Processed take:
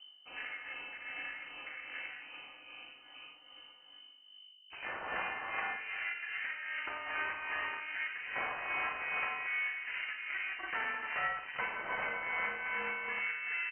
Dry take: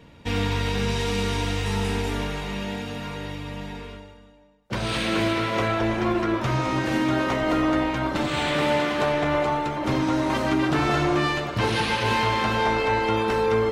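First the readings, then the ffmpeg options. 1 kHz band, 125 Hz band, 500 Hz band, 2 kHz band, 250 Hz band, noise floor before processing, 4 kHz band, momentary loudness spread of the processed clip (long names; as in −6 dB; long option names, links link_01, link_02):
−16.0 dB, below −35 dB, −25.0 dB, −6.5 dB, −34.5 dB, −48 dBFS, −16.5 dB, 17 LU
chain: -filter_complex "[0:a]afwtdn=0.0447,highpass=1300,acompressor=threshold=-33dB:ratio=3,aeval=exprs='val(0)+0.00251*(sin(2*PI*50*n/s)+sin(2*PI*2*50*n/s)/2+sin(2*PI*3*50*n/s)/3+sin(2*PI*4*50*n/s)/4+sin(2*PI*5*50*n/s)/5)':channel_layout=same,tremolo=f=2.5:d=0.5,asplit=2[link_01][link_02];[link_02]aecho=0:1:54|88|391:0.376|0.224|0.178[link_03];[link_01][link_03]amix=inputs=2:normalize=0,lowpass=frequency=2600:width_type=q:width=0.5098,lowpass=frequency=2600:width_type=q:width=0.6013,lowpass=frequency=2600:width_type=q:width=0.9,lowpass=frequency=2600:width_type=q:width=2.563,afreqshift=-3100"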